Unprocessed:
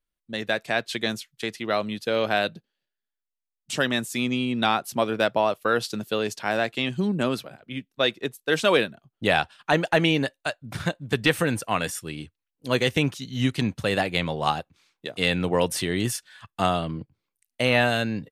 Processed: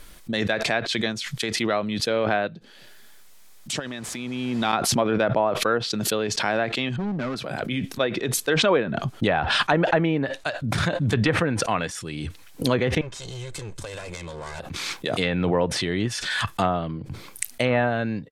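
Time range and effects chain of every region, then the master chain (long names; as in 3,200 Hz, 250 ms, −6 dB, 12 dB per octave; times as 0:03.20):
0:03.79–0:04.73: hold until the input has moved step −36 dBFS + high-shelf EQ 7,300 Hz −9 dB + downward compressor 5 to 1, threshold −30 dBFS
0:06.96–0:07.36: low-pass with resonance 1,700 Hz, resonance Q 1.5 + hard clipping −24.5 dBFS
0:13.01–0:14.60: lower of the sound and its delayed copy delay 1.9 ms + parametric band 8,000 Hz +10.5 dB 0.76 octaves + downward compressor, threshold −32 dBFS
whole clip: treble cut that deepens with the level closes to 1,600 Hz, closed at −17.5 dBFS; notch filter 2,800 Hz, Q 19; background raised ahead of every attack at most 21 dB per second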